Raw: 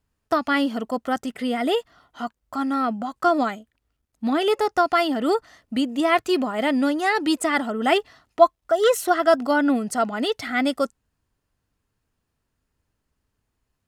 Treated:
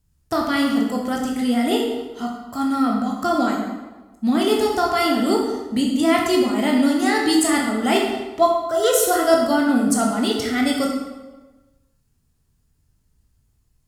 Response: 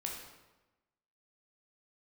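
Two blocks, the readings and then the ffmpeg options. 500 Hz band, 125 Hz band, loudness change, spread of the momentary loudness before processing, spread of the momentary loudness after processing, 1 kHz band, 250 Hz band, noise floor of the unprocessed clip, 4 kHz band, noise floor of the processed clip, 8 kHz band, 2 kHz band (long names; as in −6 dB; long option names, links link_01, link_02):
+1.5 dB, can't be measured, +2.5 dB, 9 LU, 9 LU, +0.5 dB, +5.0 dB, −78 dBFS, +4.0 dB, −65 dBFS, +10.0 dB, 0.0 dB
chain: -filter_complex "[0:a]bass=frequency=250:gain=13,treble=frequency=4000:gain=12[link_01];[1:a]atrim=start_sample=2205,asetrate=39690,aresample=44100[link_02];[link_01][link_02]afir=irnorm=-1:irlink=0,volume=-1.5dB"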